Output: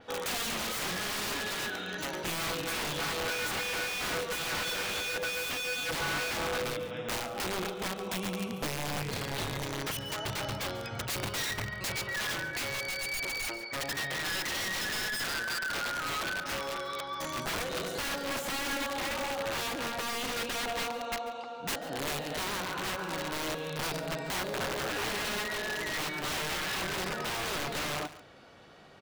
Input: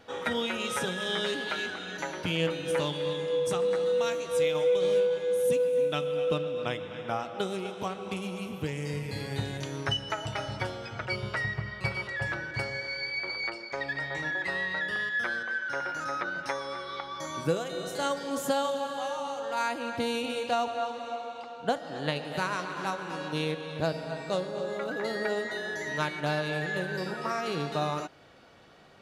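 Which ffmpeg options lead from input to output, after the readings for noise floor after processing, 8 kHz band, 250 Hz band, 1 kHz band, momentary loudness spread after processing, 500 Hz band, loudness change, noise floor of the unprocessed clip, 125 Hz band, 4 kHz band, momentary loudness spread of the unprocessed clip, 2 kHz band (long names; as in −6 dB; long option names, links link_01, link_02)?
−41 dBFS, +7.5 dB, −3.5 dB, −2.0 dB, 4 LU, −8.0 dB, −2.0 dB, −42 dBFS, −4.5 dB, +2.5 dB, 8 LU, −0.5 dB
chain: -filter_complex "[0:a]aeval=exprs='(mod(26.6*val(0)+1,2)-1)/26.6':channel_layout=same,asplit=2[link_01][link_02];[link_02]aecho=0:1:141:0.168[link_03];[link_01][link_03]amix=inputs=2:normalize=0,adynamicequalizer=threshold=0.00501:dfrequency=5300:dqfactor=0.7:tfrequency=5300:tqfactor=0.7:attack=5:release=100:ratio=0.375:range=3:mode=cutabove:tftype=highshelf,volume=1dB"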